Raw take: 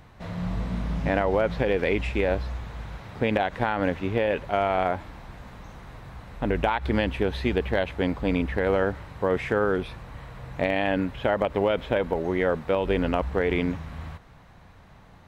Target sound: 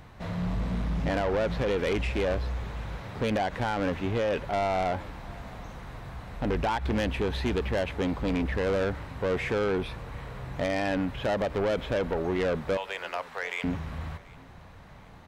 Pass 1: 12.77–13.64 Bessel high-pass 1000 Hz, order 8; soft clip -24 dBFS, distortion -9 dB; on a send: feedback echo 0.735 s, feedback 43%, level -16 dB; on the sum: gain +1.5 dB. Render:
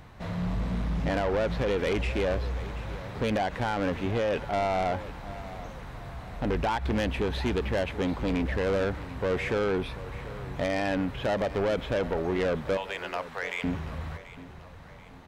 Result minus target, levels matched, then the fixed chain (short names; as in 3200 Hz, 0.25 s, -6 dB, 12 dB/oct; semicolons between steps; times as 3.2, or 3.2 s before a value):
echo-to-direct +8 dB
12.77–13.64 Bessel high-pass 1000 Hz, order 8; soft clip -24 dBFS, distortion -9 dB; on a send: feedback echo 0.735 s, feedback 43%, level -24 dB; on the sum: gain +1.5 dB